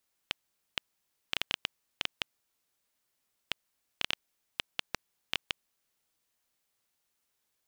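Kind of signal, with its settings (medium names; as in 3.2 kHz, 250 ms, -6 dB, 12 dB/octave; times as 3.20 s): random clicks 4.3 per s -10.5 dBFS 5.32 s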